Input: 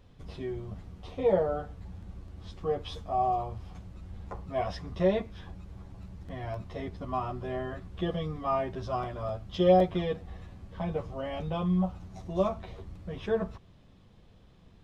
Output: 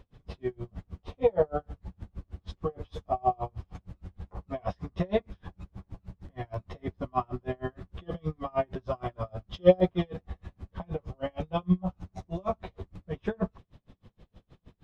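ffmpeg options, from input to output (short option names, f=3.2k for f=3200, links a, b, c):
-af "highshelf=f=3.8k:g=-6.5,aeval=exprs='val(0)*pow(10,-36*(0.5-0.5*cos(2*PI*6.4*n/s))/20)':c=same,volume=7dB"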